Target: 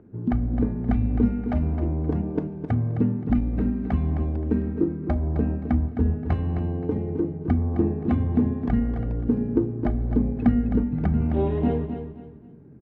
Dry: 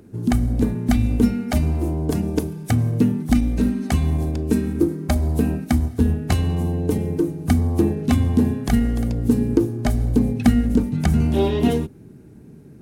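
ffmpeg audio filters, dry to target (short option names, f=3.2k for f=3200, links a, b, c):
-af "lowpass=1.6k,aemphasis=mode=reproduction:type=cd,aecho=1:1:262|524|786:0.355|0.103|0.0298,volume=-5dB"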